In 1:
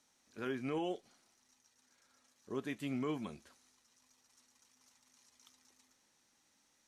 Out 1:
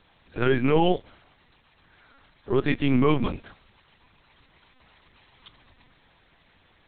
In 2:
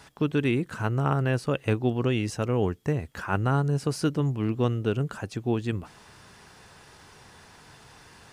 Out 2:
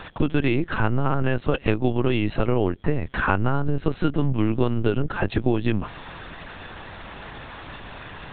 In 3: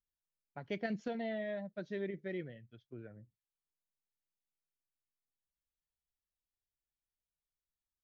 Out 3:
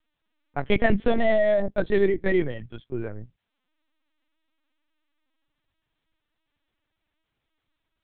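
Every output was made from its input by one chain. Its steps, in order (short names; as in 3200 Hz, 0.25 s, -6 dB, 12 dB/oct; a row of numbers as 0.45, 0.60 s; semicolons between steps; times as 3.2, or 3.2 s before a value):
compressor 12:1, threshold -30 dBFS; LPC vocoder at 8 kHz pitch kept; match loudness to -24 LUFS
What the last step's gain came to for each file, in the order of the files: +17.5, +13.5, +19.0 dB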